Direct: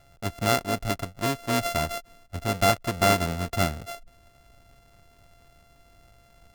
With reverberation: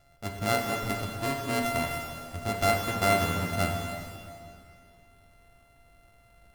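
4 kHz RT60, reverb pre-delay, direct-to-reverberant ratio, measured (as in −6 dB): 2.2 s, 11 ms, 0.5 dB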